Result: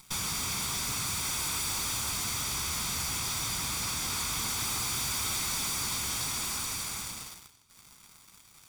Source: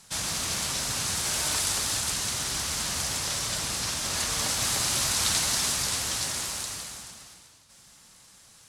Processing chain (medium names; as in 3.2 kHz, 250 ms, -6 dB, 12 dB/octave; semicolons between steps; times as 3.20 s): comb filter that takes the minimum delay 0.87 ms; waveshaping leveller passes 3; compression 3:1, threshold -31 dBFS, peak gain reduction 10.5 dB; saturation -28 dBFS, distortion -17 dB